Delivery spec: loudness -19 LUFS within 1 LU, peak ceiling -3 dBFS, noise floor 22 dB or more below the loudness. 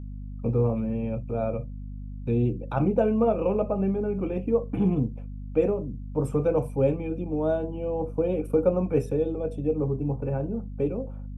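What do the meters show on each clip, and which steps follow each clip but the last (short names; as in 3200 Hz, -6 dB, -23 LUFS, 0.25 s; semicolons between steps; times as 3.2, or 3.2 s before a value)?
hum 50 Hz; harmonics up to 250 Hz; hum level -34 dBFS; loudness -27.0 LUFS; peak -10.5 dBFS; loudness target -19.0 LUFS
-> notches 50/100/150/200/250 Hz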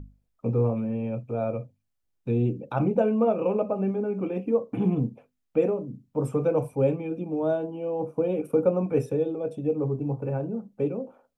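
hum none; loudness -27.5 LUFS; peak -10.5 dBFS; loudness target -19.0 LUFS
-> gain +8.5 dB; limiter -3 dBFS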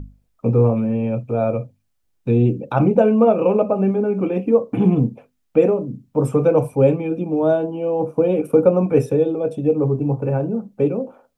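loudness -19.0 LUFS; peak -3.0 dBFS; noise floor -69 dBFS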